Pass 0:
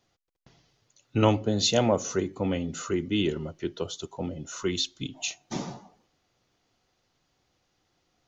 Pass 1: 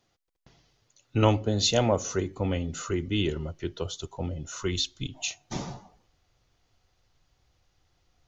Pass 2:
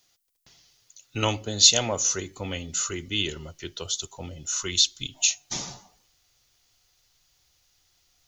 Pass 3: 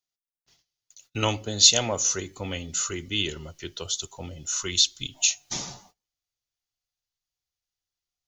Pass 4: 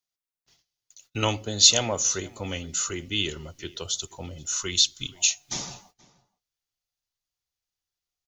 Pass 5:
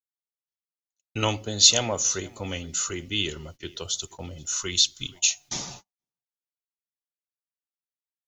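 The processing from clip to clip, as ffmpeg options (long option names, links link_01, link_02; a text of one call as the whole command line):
ffmpeg -i in.wav -af "asubboost=boost=6:cutoff=89" out.wav
ffmpeg -i in.wav -af "crystalizer=i=9.5:c=0,volume=-6.5dB" out.wav
ffmpeg -i in.wav -af "agate=range=-24dB:threshold=-55dB:ratio=16:detection=peak" out.wav
ffmpeg -i in.wav -filter_complex "[0:a]asplit=2[link_01][link_02];[link_02]adelay=478.1,volume=-22dB,highshelf=frequency=4000:gain=-10.8[link_03];[link_01][link_03]amix=inputs=2:normalize=0" out.wav
ffmpeg -i in.wav -af "agate=range=-40dB:threshold=-44dB:ratio=16:detection=peak" out.wav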